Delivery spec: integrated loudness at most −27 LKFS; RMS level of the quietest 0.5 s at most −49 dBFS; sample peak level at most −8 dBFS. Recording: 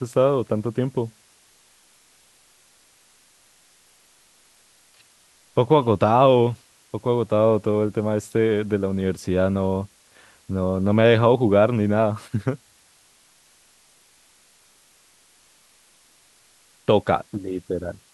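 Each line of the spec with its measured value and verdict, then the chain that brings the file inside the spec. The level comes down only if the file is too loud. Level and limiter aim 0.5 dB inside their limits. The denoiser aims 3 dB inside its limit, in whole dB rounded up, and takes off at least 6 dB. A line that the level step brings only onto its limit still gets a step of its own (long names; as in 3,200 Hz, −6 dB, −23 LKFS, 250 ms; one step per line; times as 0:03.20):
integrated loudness −21.5 LKFS: out of spec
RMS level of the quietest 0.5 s −57 dBFS: in spec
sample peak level −3.5 dBFS: out of spec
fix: level −6 dB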